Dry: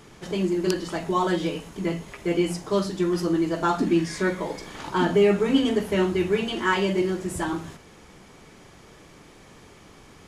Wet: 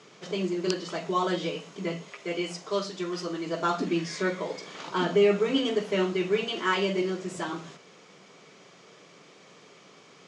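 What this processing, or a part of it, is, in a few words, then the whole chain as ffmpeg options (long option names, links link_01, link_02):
television speaker: -filter_complex "[0:a]asettb=1/sr,asplit=3[link_01][link_02][link_03];[link_01]atrim=end=2.084[link_04];[link_02]atrim=start=2.08:end=3.46,asetpts=PTS-STARTPTS,afade=type=in:duration=0.004:curve=qsin,afade=type=out:start_time=1.376:duration=0.004:curve=qsin,equalizer=frequency=160:width=0.44:gain=-6[link_05];[link_03]atrim=start=3.456[link_06];[link_04][link_05]acrossfade=duration=0.004:curve1=hsin:curve2=qsin[link_07];[link_07][link_06]acrossfade=duration=0.004:curve1=qsin:curve2=hsin,highpass=frequency=180:width=0.5412,highpass=frequency=180:width=1.3066,equalizer=frequency=230:width_type=q:width=4:gain=-9,equalizer=frequency=320:width_type=q:width=4:gain=-7,equalizer=frequency=860:width_type=q:width=4:gain=-7,equalizer=frequency=1700:width_type=q:width=4:gain=-5,lowpass=frequency=6900:width=0.5412,lowpass=frequency=6900:width=1.3066"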